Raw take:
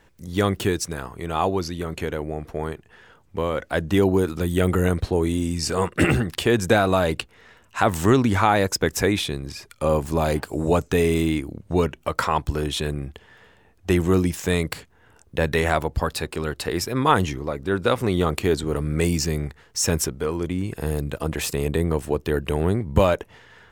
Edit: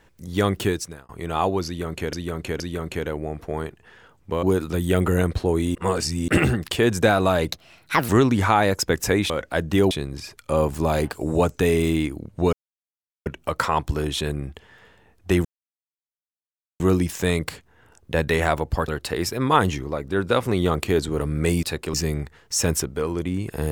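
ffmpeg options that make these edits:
ffmpeg -i in.wav -filter_complex "[0:a]asplit=16[link_01][link_02][link_03][link_04][link_05][link_06][link_07][link_08][link_09][link_10][link_11][link_12][link_13][link_14][link_15][link_16];[link_01]atrim=end=1.09,asetpts=PTS-STARTPTS,afade=type=out:start_time=0.68:duration=0.41[link_17];[link_02]atrim=start=1.09:end=2.132,asetpts=PTS-STARTPTS,afade=type=in:duration=0.004:curve=hsin[link_18];[link_03]atrim=start=1.658:end=2.132[link_19];[link_04]atrim=start=1.658:end=3.492[link_20];[link_05]atrim=start=4.098:end=5.422[link_21];[link_06]atrim=start=5.418:end=5.952,asetpts=PTS-STARTPTS,areverse[link_22];[link_07]atrim=start=5.948:end=7.194[link_23];[link_08]atrim=start=7.19:end=8.02,asetpts=PTS-STARTPTS,asetrate=64386,aresample=44100[link_24];[link_09]atrim=start=8.016:end=9.232[link_25];[link_10]atrim=start=3.488:end=4.102[link_26];[link_11]atrim=start=9.228:end=11.85,asetpts=PTS-STARTPTS,afade=type=out:start_time=2.618:duration=0.004:curve=hsin,apad=pad_dur=0.73[link_27];[link_12]atrim=start=11.85:end=14.04,asetpts=PTS-STARTPTS,afade=type=in:duration=0.004:curve=hsin,afade=type=out:start_time=2.186:duration=0.004:curve=hsin,apad=pad_dur=1.35[link_28];[link_13]atrim=start=14.04:end=16.122,asetpts=PTS-STARTPTS,afade=type=in:duration=0.004:curve=hsin[link_29];[link_14]atrim=start=16.428:end=19.182[link_30];[link_15]atrim=start=16.118:end=16.432[link_31];[link_16]atrim=start=19.178[link_32];[link_17][link_18]concat=n=2:v=0:a=1[link_33];[link_33][link_19]acrossfade=duration=0.004:curve1=hsin:curve2=hsin[link_34];[link_34][link_20]acrossfade=duration=0.004:curve1=hsin:curve2=hsin[link_35];[link_35][link_21]acrossfade=duration=0.004:curve1=hsin:curve2=hsin[link_36];[link_36][link_22]acrossfade=duration=0.004:curve1=hsin:curve2=hsin[link_37];[link_37][link_23]acrossfade=duration=0.004:curve1=hsin:curve2=hsin[link_38];[link_38][link_24]acrossfade=duration=0.004:curve1=hsin:curve2=hsin[link_39];[link_39][link_25]acrossfade=duration=0.004:curve1=hsin:curve2=hsin[link_40];[link_40][link_26]acrossfade=duration=0.004:curve1=hsin:curve2=hsin[link_41];[link_27][link_28][link_29]concat=n=3:v=0:a=1[link_42];[link_41][link_42]acrossfade=duration=0.004:curve1=hsin:curve2=hsin[link_43];[link_43][link_30]acrossfade=duration=0.004:curve1=hsin:curve2=hsin[link_44];[link_44][link_31]acrossfade=duration=0.004:curve1=hsin:curve2=hsin[link_45];[link_45][link_32]acrossfade=duration=0.004:curve1=hsin:curve2=hsin" out.wav

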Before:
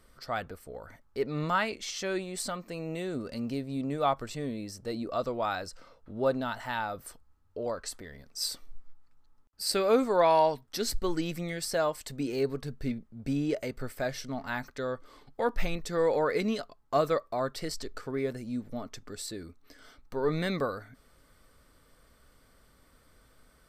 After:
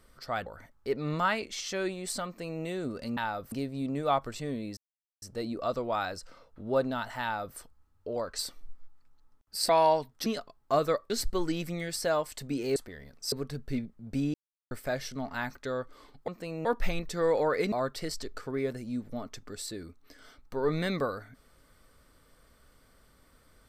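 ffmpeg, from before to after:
ffmpeg -i in.wav -filter_complex "[0:a]asplit=16[link_01][link_02][link_03][link_04][link_05][link_06][link_07][link_08][link_09][link_10][link_11][link_12][link_13][link_14][link_15][link_16];[link_01]atrim=end=0.462[link_17];[link_02]atrim=start=0.758:end=3.472[link_18];[link_03]atrim=start=6.718:end=7.072[link_19];[link_04]atrim=start=3.468:end=4.72,asetpts=PTS-STARTPTS,afade=type=out:start_time=1.248:duration=0.004:curve=hsin,apad=pad_dur=0.45[link_20];[link_05]atrim=start=4.72:end=7.892,asetpts=PTS-STARTPTS,afade=type=in:duration=0.004:curve=hsin[link_21];[link_06]atrim=start=8.448:end=9.752[link_22];[link_07]atrim=start=10.218:end=10.792[link_23];[link_08]atrim=start=16.478:end=17.322[link_24];[link_09]atrim=start=10.788:end=12.452[link_25];[link_10]atrim=start=7.888:end=8.452[link_26];[link_11]atrim=start=12.448:end=13.47,asetpts=PTS-STARTPTS,afade=type=out:start_time=1.018:duration=0.004:curve=hsin[link_27];[link_12]atrim=start=13.47:end=13.84,asetpts=PTS-STARTPTS,volume=0[link_28];[link_13]atrim=start=13.84:end=15.412,asetpts=PTS-STARTPTS,afade=type=in:duration=0.004:curve=hsin[link_29];[link_14]atrim=start=2.558:end=2.932[link_30];[link_15]atrim=start=15.408:end=16.482[link_31];[link_16]atrim=start=17.318[link_32];[link_17][link_18]acrossfade=duration=0.004:curve1=hsin:curve2=hsin[link_33];[link_33][link_19]acrossfade=duration=0.004:curve1=hsin:curve2=hsin[link_34];[link_20][link_21]concat=n=2:v=0:a=1[link_35];[link_34][link_35]acrossfade=duration=0.004:curve1=hsin:curve2=hsin[link_36];[link_36][link_22]acrossfade=duration=0.004:curve1=hsin:curve2=hsin[link_37];[link_37][link_23]acrossfade=duration=0.004:curve1=hsin:curve2=hsin[link_38];[link_38][link_24]acrossfade=duration=0.004:curve1=hsin:curve2=hsin[link_39];[link_39][link_25]acrossfade=duration=0.004:curve1=hsin:curve2=hsin[link_40];[link_40][link_26]acrossfade=duration=0.004:curve1=hsin:curve2=hsin[link_41];[link_27][link_28][link_29]concat=n=3:v=0:a=1[link_42];[link_41][link_42]acrossfade=duration=0.004:curve1=hsin:curve2=hsin[link_43];[link_43][link_30]acrossfade=duration=0.004:curve1=hsin:curve2=hsin[link_44];[link_44][link_31]acrossfade=duration=0.004:curve1=hsin:curve2=hsin[link_45];[link_45][link_32]acrossfade=duration=0.004:curve1=hsin:curve2=hsin" out.wav

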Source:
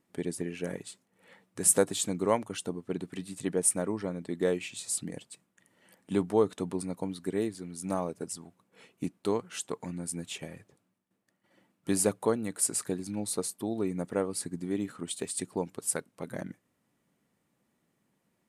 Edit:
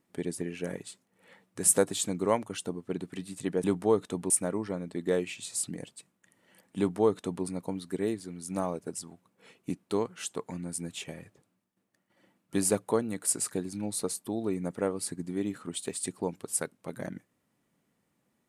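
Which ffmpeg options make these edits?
ffmpeg -i in.wav -filter_complex "[0:a]asplit=3[link_01][link_02][link_03];[link_01]atrim=end=3.642[link_04];[link_02]atrim=start=6.118:end=6.782[link_05];[link_03]atrim=start=3.638[link_06];[link_04][link_05]acrossfade=duration=0.004:curve1=hsin:curve2=hsin[link_07];[link_07][link_06]acrossfade=duration=0.004:curve1=hsin:curve2=hsin" out.wav

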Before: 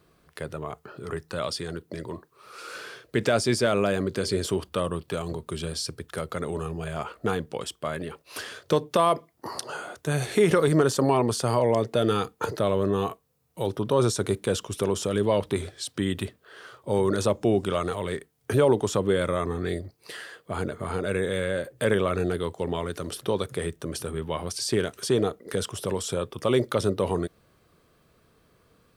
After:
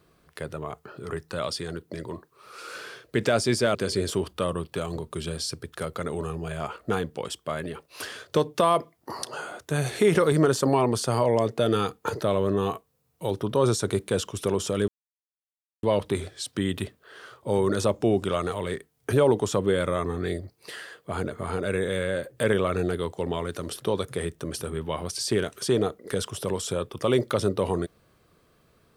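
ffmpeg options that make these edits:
ffmpeg -i in.wav -filter_complex "[0:a]asplit=3[link_01][link_02][link_03];[link_01]atrim=end=3.752[link_04];[link_02]atrim=start=4.108:end=15.24,asetpts=PTS-STARTPTS,afade=type=out:start_time=11.128:duration=0.004:curve=hsin,apad=pad_dur=0.95[link_05];[link_03]atrim=start=15.24,asetpts=PTS-STARTPTS,afade=type=in:duration=0.004:curve=hsin[link_06];[link_05][link_06]concat=n=2:v=0:a=1[link_07];[link_04][link_07]acrossfade=duration=0.004:curve1=hsin:curve2=hsin" out.wav

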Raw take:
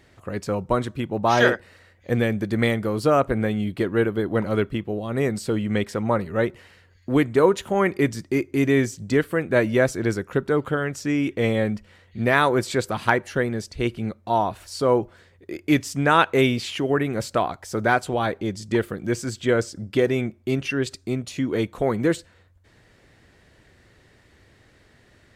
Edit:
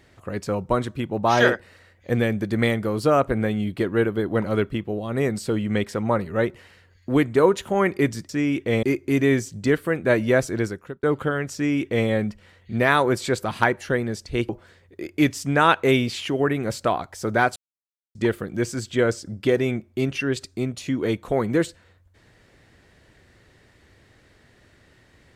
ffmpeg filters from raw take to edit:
ffmpeg -i in.wav -filter_complex "[0:a]asplit=7[link_01][link_02][link_03][link_04][link_05][link_06][link_07];[link_01]atrim=end=8.292[link_08];[link_02]atrim=start=10.998:end=11.542[link_09];[link_03]atrim=start=8.288:end=10.49,asetpts=PTS-STARTPTS,afade=type=out:start_time=1.722:duration=0.48[link_10];[link_04]atrim=start=10.49:end=13.952,asetpts=PTS-STARTPTS,afade=type=in:duration=0.004:curve=hsin[link_11];[link_05]atrim=start=14.988:end=18.06,asetpts=PTS-STARTPTS,afade=type=out:start_time=3.068:duration=0.004:curve=hsin[link_12];[link_06]atrim=start=18.06:end=18.65,asetpts=PTS-STARTPTS,volume=0[link_13];[link_07]atrim=start=18.65,asetpts=PTS-STARTPTS,afade=type=in:duration=0.004:curve=hsin[link_14];[link_08][link_09]acrossfade=duration=0.004:curve1=hsin:curve2=hsin[link_15];[link_10][link_11]concat=n=2:v=0:a=1[link_16];[link_15][link_16]acrossfade=duration=0.004:curve1=hsin:curve2=hsin[link_17];[link_12][link_13][link_14]concat=n=3:v=0:a=1[link_18];[link_17][link_18]acrossfade=duration=0.004:curve1=hsin:curve2=hsin" out.wav

